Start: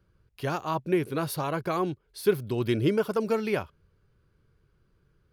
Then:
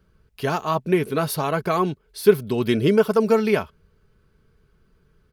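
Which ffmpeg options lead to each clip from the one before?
ffmpeg -i in.wav -af "aecho=1:1:4.6:0.42,volume=6dB" out.wav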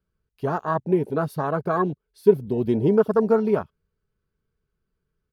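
ffmpeg -i in.wav -af "afwtdn=0.0631,volume=-1dB" out.wav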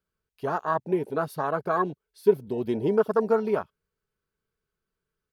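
ffmpeg -i in.wav -af "lowshelf=frequency=290:gain=-11.5" out.wav

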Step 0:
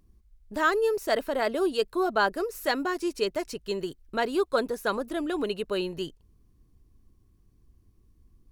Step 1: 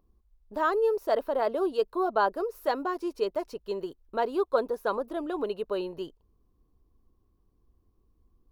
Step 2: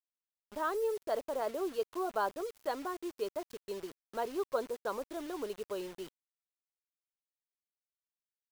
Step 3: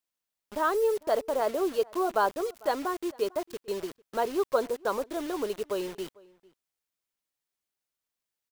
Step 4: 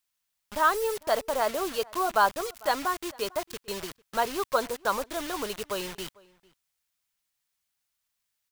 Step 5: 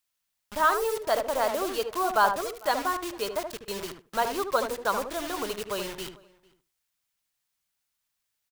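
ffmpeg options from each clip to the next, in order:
ffmpeg -i in.wav -af "equalizer=frequency=125:width_type=o:width=1:gain=-5,equalizer=frequency=500:width_type=o:width=1:gain=6,equalizer=frequency=1000:width_type=o:width=1:gain=8,equalizer=frequency=2000:width_type=o:width=1:gain=-6,equalizer=frequency=8000:width_type=o:width=1:gain=-10,volume=-6dB" out.wav
ffmpeg -i in.wav -af "acrusher=bits=6:mix=0:aa=0.000001,volume=-8dB" out.wav
ffmpeg -i in.wav -filter_complex "[0:a]asplit=2[link_01][link_02];[link_02]adelay=449,volume=-24dB,highshelf=frequency=4000:gain=-10.1[link_03];[link_01][link_03]amix=inputs=2:normalize=0,volume=7.5dB" out.wav
ffmpeg -i in.wav -af "equalizer=frequency=380:width_type=o:width=1.7:gain=-12.5,volume=7.5dB" out.wav
ffmpeg -i in.wav -filter_complex "[0:a]asplit=2[link_01][link_02];[link_02]adelay=75,lowpass=frequency=1200:poles=1,volume=-5.5dB,asplit=2[link_03][link_04];[link_04]adelay=75,lowpass=frequency=1200:poles=1,volume=0.17,asplit=2[link_05][link_06];[link_06]adelay=75,lowpass=frequency=1200:poles=1,volume=0.17[link_07];[link_01][link_03][link_05][link_07]amix=inputs=4:normalize=0" out.wav

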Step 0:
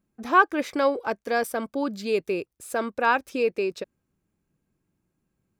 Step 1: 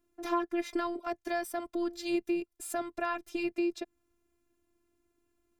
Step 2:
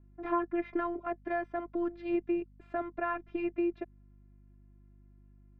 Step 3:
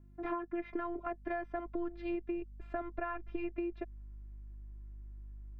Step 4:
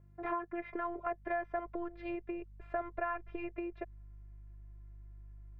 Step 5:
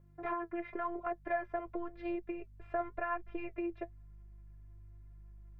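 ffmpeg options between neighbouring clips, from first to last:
ffmpeg -i in.wav -filter_complex "[0:a]afftfilt=real='hypot(re,im)*cos(PI*b)':imag='0':win_size=512:overlap=0.75,acrossover=split=230[link_01][link_02];[link_02]acompressor=threshold=-42dB:ratio=2.5[link_03];[link_01][link_03]amix=inputs=2:normalize=0,volume=5.5dB" out.wav
ffmpeg -i in.wav -af "aeval=exprs='val(0)+0.00141*(sin(2*PI*50*n/s)+sin(2*PI*2*50*n/s)/2+sin(2*PI*3*50*n/s)/3+sin(2*PI*4*50*n/s)/4+sin(2*PI*5*50*n/s)/5)':channel_layout=same,lowpass=frequency=2200:width=0.5412,lowpass=frequency=2200:width=1.3066" out.wav
ffmpeg -i in.wav -af "asubboost=boost=7.5:cutoff=58,acompressor=threshold=-35dB:ratio=6,volume=1dB" out.wav
ffmpeg -i in.wav -af "equalizer=frequency=125:width_type=o:width=1:gain=10,equalizer=frequency=250:width_type=o:width=1:gain=-9,equalizer=frequency=500:width_type=o:width=1:gain=11,equalizer=frequency=1000:width_type=o:width=1:gain=5,equalizer=frequency=2000:width_type=o:width=1:gain=7,volume=-5dB" out.wav
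ffmpeg -i in.wav -af "flanger=delay=5.5:depth=3.6:regen=52:speed=0.93:shape=sinusoidal,volume=4dB" out.wav

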